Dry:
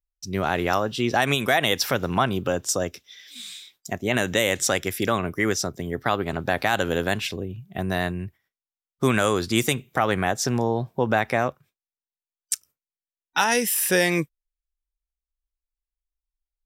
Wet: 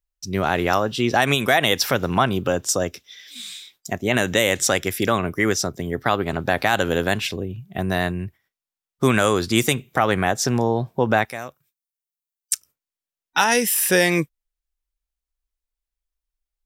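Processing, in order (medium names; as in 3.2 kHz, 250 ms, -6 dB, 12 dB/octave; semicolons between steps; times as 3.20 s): 11.25–12.53 s: pre-emphasis filter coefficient 0.8; trim +3 dB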